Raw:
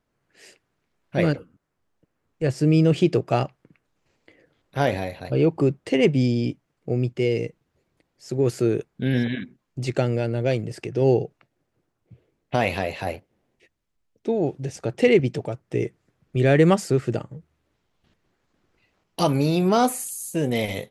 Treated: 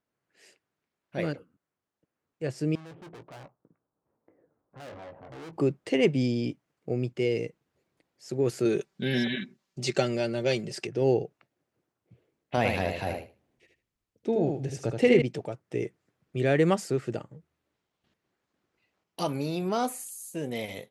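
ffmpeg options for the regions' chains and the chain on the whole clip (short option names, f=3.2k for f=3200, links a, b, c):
-filter_complex "[0:a]asettb=1/sr,asplit=3[a][b][c];[a]atrim=end=2.754[d];[b]atrim=start=2.75:end=5.53,asetpts=PTS-STARTPTS,afade=t=in:d=0.004:c=qsin,afade=t=out:st=2.776:d=0.004:c=qsin,lowpass=f=1.2k:w=0.5412,lowpass=f=1.2k:w=1.3066,aeval=exprs='(tanh(70.8*val(0)+0.4)-tanh(0.4))/70.8':c=same,asplit=2[e][f];[f]adelay=18,volume=-11dB[g];[e][g]amix=inputs=2:normalize=0,atrim=end_sample=122598[h];[c]atrim=start=5.526[i];[d][h]acrossfade=d=0.004:c1=hsin:c2=qsin[j];[j][i]acrossfade=d=0.004:c1=qsin:c2=hsin,asettb=1/sr,asplit=3[k][l][m];[k]atrim=end=8.654[n];[l]atrim=start=8.65:end=10.87,asetpts=PTS-STARTPTS,afade=t=in:d=0.004:c=qsin,afade=t=out:st=2.216:d=0.004:c=qsin,equalizer=f=5.1k:w=0.7:g=9,aecho=1:1:5.2:0.58,atrim=end_sample=97902[o];[m]atrim=start=10.866[p];[n][o]acrossfade=d=0.004:c1=hsin:c2=qsin[q];[q][p]acrossfade=d=0.004:c1=qsin:c2=hsin,asettb=1/sr,asplit=3[r][s][t];[r]atrim=end=12.574[u];[s]atrim=start=12.57:end=15.22,asetpts=PTS-STARTPTS,afade=t=in:d=0.004:c=qsin,afade=t=out:st=2.646:d=0.004:c=qsin,lowshelf=f=140:g=11.5,aecho=1:1:77|154|231:0.562|0.101|0.0182,atrim=end_sample=116865[v];[t]atrim=start=15.216[w];[u][v]acrossfade=d=0.004:c1=hsin:c2=qsin[x];[x][w]acrossfade=d=0.004:c1=qsin:c2=hsin,highpass=f=160:p=1,dynaudnorm=f=240:g=31:m=11.5dB,volume=-8.5dB"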